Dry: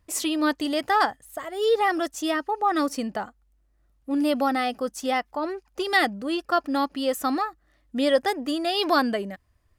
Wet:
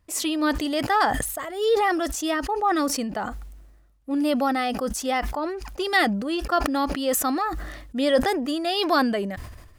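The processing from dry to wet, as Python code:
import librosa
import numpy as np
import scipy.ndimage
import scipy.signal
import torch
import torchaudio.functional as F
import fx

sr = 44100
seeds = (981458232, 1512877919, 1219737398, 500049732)

y = fx.sustainer(x, sr, db_per_s=47.0)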